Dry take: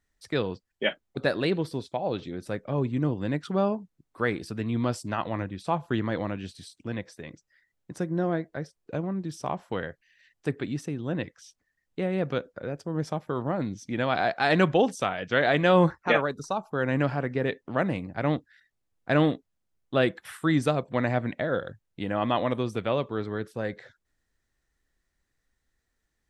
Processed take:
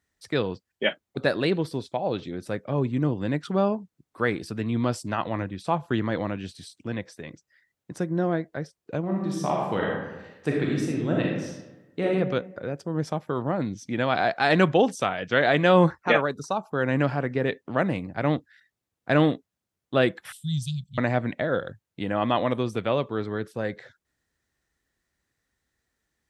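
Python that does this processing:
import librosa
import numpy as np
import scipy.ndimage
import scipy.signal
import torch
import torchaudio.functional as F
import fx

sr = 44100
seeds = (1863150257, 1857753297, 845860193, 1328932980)

y = fx.reverb_throw(x, sr, start_s=9.02, length_s=3.05, rt60_s=1.1, drr_db=-2.5)
y = fx.cheby1_bandstop(y, sr, low_hz=170.0, high_hz=3200.0, order=4, at=(20.32, 20.98))
y = scipy.signal.sosfilt(scipy.signal.butter(2, 68.0, 'highpass', fs=sr, output='sos'), y)
y = F.gain(torch.from_numpy(y), 2.0).numpy()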